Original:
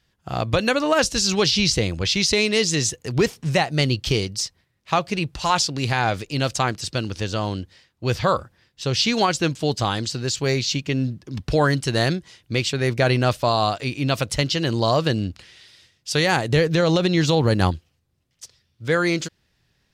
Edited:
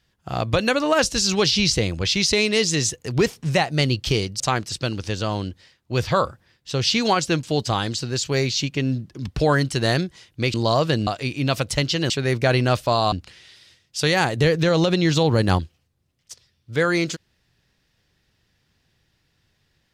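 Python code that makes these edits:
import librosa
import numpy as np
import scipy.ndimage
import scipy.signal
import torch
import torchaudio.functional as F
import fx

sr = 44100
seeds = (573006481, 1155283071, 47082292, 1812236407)

y = fx.edit(x, sr, fx.cut(start_s=4.4, length_s=2.12),
    fx.swap(start_s=12.66, length_s=1.02, other_s=14.71, other_length_s=0.53), tone=tone)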